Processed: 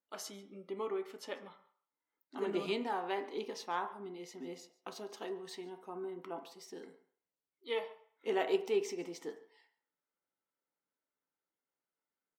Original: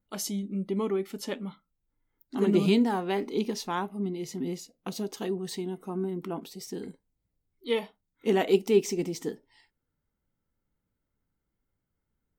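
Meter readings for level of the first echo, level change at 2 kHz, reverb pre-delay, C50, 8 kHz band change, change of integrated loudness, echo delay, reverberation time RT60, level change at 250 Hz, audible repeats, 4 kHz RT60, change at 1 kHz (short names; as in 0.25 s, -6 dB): -22.0 dB, -5.5 dB, 3 ms, 12.0 dB, -11.5 dB, -10.0 dB, 0.142 s, 0.55 s, -15.5 dB, 1, 0.45 s, -4.5 dB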